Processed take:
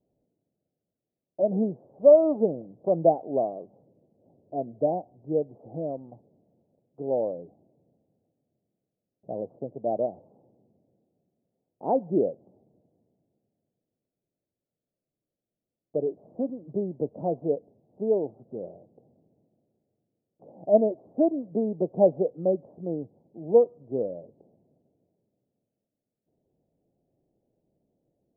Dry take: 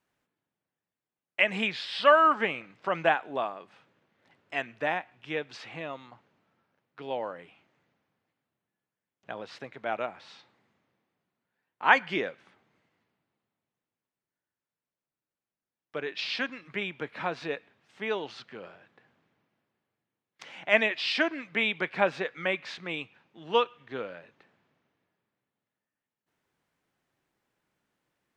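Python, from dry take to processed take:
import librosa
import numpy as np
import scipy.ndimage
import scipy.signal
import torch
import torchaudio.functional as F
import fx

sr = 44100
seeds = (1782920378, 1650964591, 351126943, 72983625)

y = scipy.signal.sosfilt(scipy.signal.butter(8, 680.0, 'lowpass', fs=sr, output='sos'), x)
y = y * librosa.db_to_amplitude(8.5)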